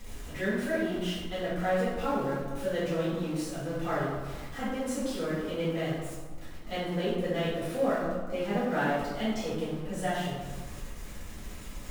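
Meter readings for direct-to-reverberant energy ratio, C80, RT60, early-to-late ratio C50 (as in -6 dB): -11.5 dB, 2.5 dB, 1.5 s, -0.5 dB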